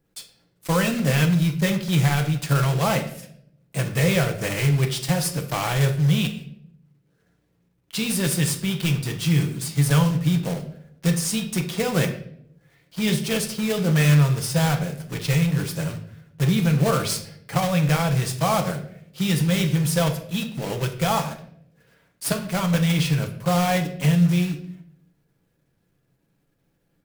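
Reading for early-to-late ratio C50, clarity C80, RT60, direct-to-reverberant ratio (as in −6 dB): 10.5 dB, 14.0 dB, 0.70 s, 4.0 dB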